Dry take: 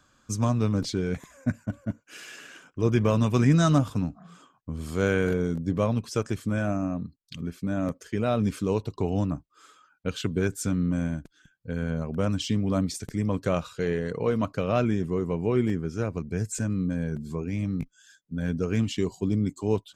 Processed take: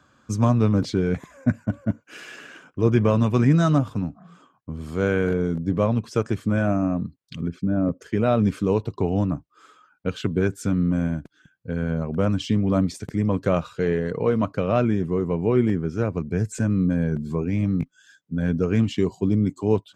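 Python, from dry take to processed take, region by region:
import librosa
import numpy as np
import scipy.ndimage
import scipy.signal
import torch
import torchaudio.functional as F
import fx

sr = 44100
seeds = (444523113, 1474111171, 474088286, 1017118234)

y = fx.chain(x, sr, fx.envelope_sharpen(power=1.5),
    fx.lowpass(hz=7400.0, slope=12), at=(7.48, 8.02))
y = fx.rider(y, sr, range_db=3, speed_s=2.0)
y = scipy.signal.sosfilt(scipy.signal.butter(2, 71.0, 'highpass', fs=sr, output='sos'), y)
y = fx.high_shelf(y, sr, hz=3700.0, db=-11.5)
y = y * 10.0 ** (4.5 / 20.0)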